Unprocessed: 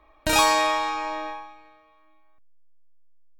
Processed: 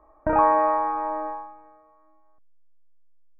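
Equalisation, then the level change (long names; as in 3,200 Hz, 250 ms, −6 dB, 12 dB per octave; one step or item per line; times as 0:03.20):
Gaussian smoothing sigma 7.9 samples
low-shelf EQ 420 Hz −10.5 dB
+9.0 dB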